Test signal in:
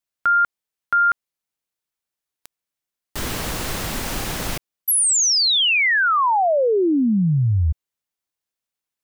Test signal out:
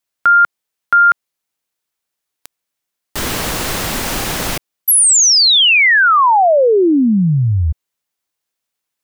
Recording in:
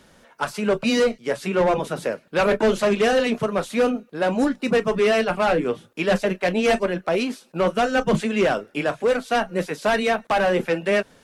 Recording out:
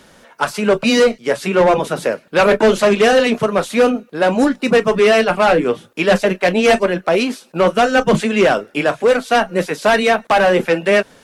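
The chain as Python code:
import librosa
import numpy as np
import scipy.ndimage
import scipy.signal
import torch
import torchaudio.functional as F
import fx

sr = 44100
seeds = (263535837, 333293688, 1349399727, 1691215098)

y = fx.low_shelf(x, sr, hz=170.0, db=-5.0)
y = y * 10.0 ** (7.5 / 20.0)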